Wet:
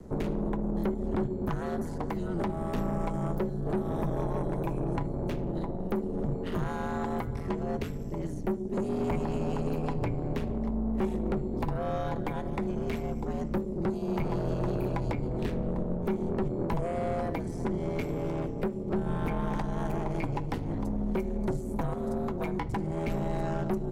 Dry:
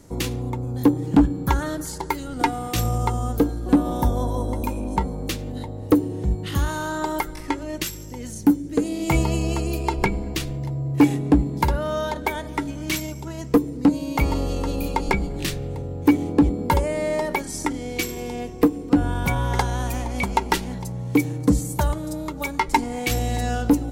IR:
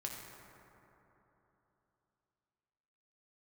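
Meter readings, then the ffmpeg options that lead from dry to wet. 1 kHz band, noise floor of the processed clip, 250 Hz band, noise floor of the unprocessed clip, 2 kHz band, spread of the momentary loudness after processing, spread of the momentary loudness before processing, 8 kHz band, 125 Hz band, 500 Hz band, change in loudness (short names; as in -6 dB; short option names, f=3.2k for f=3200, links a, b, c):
-10.5 dB, -35 dBFS, -9.0 dB, -34 dBFS, -13.5 dB, 3 LU, 9 LU, under -20 dB, -7.0 dB, -4.5 dB, -8.5 dB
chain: -filter_complex "[0:a]aeval=exprs='val(0)*sin(2*PI*85*n/s)':c=same,acrossover=split=250|2800[a][b][c];[a]acompressor=threshold=-34dB:ratio=4[d];[b]acompressor=threshold=-32dB:ratio=4[e];[c]acompressor=threshold=-42dB:ratio=4[f];[d][e][f]amix=inputs=3:normalize=0,tiltshelf=f=1.4k:g=8.5,acrossover=split=380|1700[g][h][i];[i]acrusher=bits=6:mode=log:mix=0:aa=0.000001[j];[g][h][j]amix=inputs=3:normalize=0,aeval=exprs='(tanh(15.8*val(0)+0.35)-tanh(0.35))/15.8':c=same,asplit=2[k][l];[1:a]atrim=start_sample=2205,atrim=end_sample=3528,lowpass=5.1k[m];[l][m]afir=irnorm=-1:irlink=0,volume=-6.5dB[n];[k][n]amix=inputs=2:normalize=0,volume=-3dB"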